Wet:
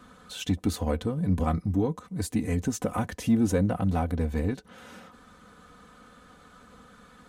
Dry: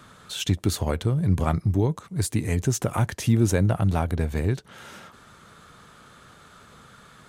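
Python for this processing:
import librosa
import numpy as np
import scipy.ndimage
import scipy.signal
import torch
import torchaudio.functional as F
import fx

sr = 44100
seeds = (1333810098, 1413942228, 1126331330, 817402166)

p1 = fx.tilt_shelf(x, sr, db=3.5, hz=1300.0)
p2 = p1 + 0.74 * np.pad(p1, (int(4.0 * sr / 1000.0), 0))[:len(p1)]
p3 = 10.0 ** (-14.5 / 20.0) * np.tanh(p2 / 10.0 ** (-14.5 / 20.0))
p4 = p2 + (p3 * librosa.db_to_amplitude(-7.0))
y = p4 * librosa.db_to_amplitude(-8.5)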